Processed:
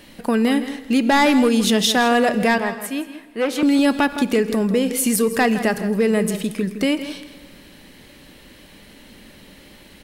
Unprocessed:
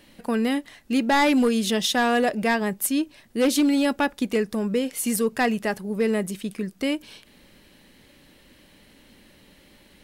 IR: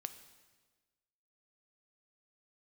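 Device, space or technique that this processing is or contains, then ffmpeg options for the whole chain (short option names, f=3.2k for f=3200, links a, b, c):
ducked reverb: -filter_complex "[0:a]asettb=1/sr,asplit=3[a][b][c];[a]atrim=end=2.584[d];[b]atrim=start=2.58:end=3.63,asetpts=PTS-STARTPTS,afade=t=in:d=0.004:c=qsin,afade=t=out:st=1.046:d=0.004:c=qsin,acrossover=split=540 2500:gain=0.224 1 0.178[e][f][g];[e][f][g]amix=inputs=3:normalize=0[h];[c]atrim=start=3.626[i];[d][h]acrossfade=d=0.004:c1=hsin:c2=qsin[j];[j][i]acrossfade=d=0.004:c1=qsin:c2=hsin,asplit=3[k][l][m];[1:a]atrim=start_sample=2205[n];[l][n]afir=irnorm=-1:irlink=0[o];[m]apad=whole_len=442763[p];[o][p]sidechaincompress=threshold=-26dB:ratio=8:attack=16:release=114,volume=7dB[q];[k][q]amix=inputs=2:normalize=0,asplit=2[r][s];[s]adelay=163.3,volume=-12dB,highshelf=f=4k:g=-3.67[t];[r][t]amix=inputs=2:normalize=0"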